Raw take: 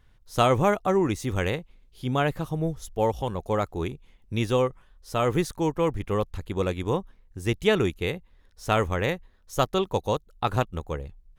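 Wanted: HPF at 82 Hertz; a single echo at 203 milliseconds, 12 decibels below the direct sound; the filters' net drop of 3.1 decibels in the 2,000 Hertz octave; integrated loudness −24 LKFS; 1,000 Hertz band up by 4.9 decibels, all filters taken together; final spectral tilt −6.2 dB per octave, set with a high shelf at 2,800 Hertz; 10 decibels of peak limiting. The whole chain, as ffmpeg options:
ffmpeg -i in.wav -af "highpass=82,equalizer=frequency=1000:width_type=o:gain=8.5,equalizer=frequency=2000:width_type=o:gain=-5.5,highshelf=frequency=2800:gain=-4.5,alimiter=limit=-13.5dB:level=0:latency=1,aecho=1:1:203:0.251,volume=3.5dB" out.wav

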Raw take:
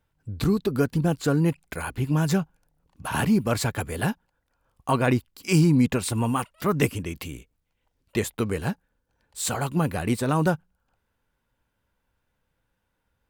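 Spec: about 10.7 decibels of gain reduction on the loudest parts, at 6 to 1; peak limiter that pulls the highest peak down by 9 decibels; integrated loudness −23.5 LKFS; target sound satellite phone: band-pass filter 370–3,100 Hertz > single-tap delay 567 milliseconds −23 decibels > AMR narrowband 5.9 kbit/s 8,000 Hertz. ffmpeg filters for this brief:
ffmpeg -i in.wav -af "acompressor=threshold=-27dB:ratio=6,alimiter=level_in=1dB:limit=-24dB:level=0:latency=1,volume=-1dB,highpass=370,lowpass=3100,aecho=1:1:567:0.0708,volume=19.5dB" -ar 8000 -c:a libopencore_amrnb -b:a 5900 out.amr

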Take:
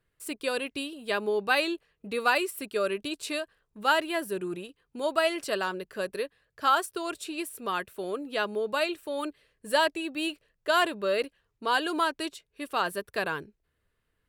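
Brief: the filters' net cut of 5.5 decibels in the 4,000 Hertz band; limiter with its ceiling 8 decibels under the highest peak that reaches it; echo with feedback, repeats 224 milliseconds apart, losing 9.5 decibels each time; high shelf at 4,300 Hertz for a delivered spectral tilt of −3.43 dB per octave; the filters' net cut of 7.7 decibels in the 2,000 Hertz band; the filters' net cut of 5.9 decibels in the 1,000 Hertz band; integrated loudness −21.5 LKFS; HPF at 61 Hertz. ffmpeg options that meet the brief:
ffmpeg -i in.wav -af "highpass=61,equalizer=frequency=1000:width_type=o:gain=-5,equalizer=frequency=2000:width_type=o:gain=-9,equalizer=frequency=4000:width_type=o:gain=-7,highshelf=frequency=4300:gain=7.5,alimiter=limit=-22dB:level=0:latency=1,aecho=1:1:224|448|672|896:0.335|0.111|0.0365|0.012,volume=12.5dB" out.wav

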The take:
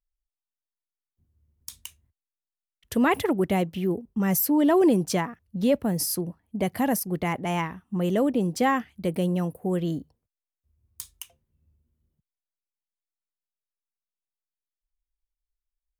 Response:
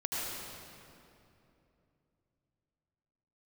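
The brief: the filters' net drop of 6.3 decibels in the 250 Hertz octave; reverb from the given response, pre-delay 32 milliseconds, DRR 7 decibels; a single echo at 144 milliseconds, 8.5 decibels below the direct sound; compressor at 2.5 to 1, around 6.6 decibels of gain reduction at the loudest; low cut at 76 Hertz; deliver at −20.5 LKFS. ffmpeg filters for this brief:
-filter_complex "[0:a]highpass=76,equalizer=frequency=250:width_type=o:gain=-9,acompressor=threshold=-29dB:ratio=2.5,aecho=1:1:144:0.376,asplit=2[link_01][link_02];[1:a]atrim=start_sample=2205,adelay=32[link_03];[link_02][link_03]afir=irnorm=-1:irlink=0,volume=-12.5dB[link_04];[link_01][link_04]amix=inputs=2:normalize=0,volume=11dB"

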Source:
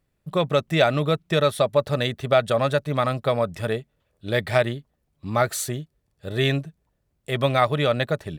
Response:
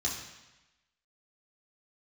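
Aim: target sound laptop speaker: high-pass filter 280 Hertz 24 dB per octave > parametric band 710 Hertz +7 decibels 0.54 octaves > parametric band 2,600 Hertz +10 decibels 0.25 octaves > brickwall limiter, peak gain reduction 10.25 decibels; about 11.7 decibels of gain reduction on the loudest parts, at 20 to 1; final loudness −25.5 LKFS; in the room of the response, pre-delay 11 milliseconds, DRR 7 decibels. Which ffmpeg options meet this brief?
-filter_complex "[0:a]acompressor=threshold=-25dB:ratio=20,asplit=2[link_01][link_02];[1:a]atrim=start_sample=2205,adelay=11[link_03];[link_02][link_03]afir=irnorm=-1:irlink=0,volume=-12dB[link_04];[link_01][link_04]amix=inputs=2:normalize=0,highpass=frequency=280:width=0.5412,highpass=frequency=280:width=1.3066,equalizer=frequency=710:width_type=o:width=0.54:gain=7,equalizer=frequency=2600:width_type=o:width=0.25:gain=10,volume=7.5dB,alimiter=limit=-14dB:level=0:latency=1"

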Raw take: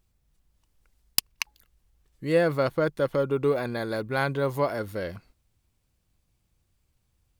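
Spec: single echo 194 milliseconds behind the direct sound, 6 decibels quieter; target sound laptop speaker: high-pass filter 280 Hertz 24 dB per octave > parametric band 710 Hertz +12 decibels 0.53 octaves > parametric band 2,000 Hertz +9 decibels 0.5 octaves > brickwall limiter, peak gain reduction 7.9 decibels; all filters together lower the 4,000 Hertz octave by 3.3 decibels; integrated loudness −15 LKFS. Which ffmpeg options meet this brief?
ffmpeg -i in.wav -af "highpass=frequency=280:width=0.5412,highpass=frequency=280:width=1.3066,equalizer=frequency=710:width_type=o:width=0.53:gain=12,equalizer=frequency=2000:width_type=o:width=0.5:gain=9,equalizer=frequency=4000:width_type=o:gain=-5.5,aecho=1:1:194:0.501,volume=9.5dB,alimiter=limit=-3dB:level=0:latency=1" out.wav

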